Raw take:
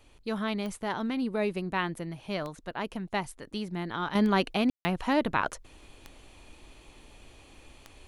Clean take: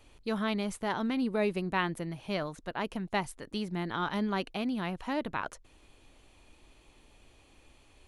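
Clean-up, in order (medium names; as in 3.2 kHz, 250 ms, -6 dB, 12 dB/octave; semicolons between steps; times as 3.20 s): de-click; room tone fill 4.70–4.85 s; gain correction -7 dB, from 4.15 s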